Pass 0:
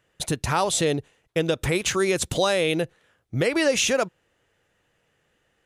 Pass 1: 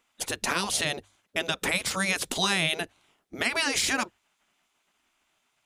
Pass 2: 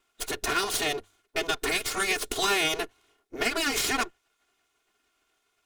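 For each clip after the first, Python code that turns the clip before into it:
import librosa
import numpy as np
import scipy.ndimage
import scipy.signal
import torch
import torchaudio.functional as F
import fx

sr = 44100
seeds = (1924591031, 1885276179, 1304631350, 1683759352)

y1 = fx.spec_gate(x, sr, threshold_db=-10, keep='weak')
y1 = fx.hum_notches(y1, sr, base_hz=50, count=2)
y1 = y1 * librosa.db_to_amplitude(2.5)
y2 = fx.lower_of_two(y1, sr, delay_ms=2.8)
y2 = fx.small_body(y2, sr, hz=(430.0, 1400.0), ring_ms=45, db=9)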